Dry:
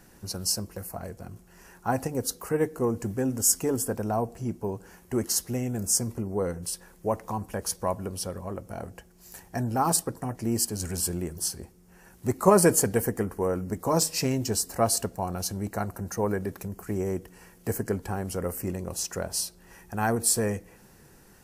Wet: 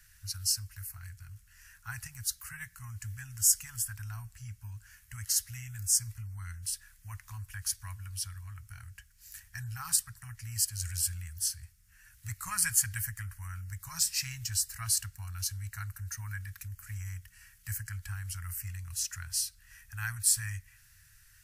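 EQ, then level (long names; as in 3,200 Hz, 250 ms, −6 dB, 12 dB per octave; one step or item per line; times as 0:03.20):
Chebyshev band-stop filter 100–1,600 Hz, order 3
−1.5 dB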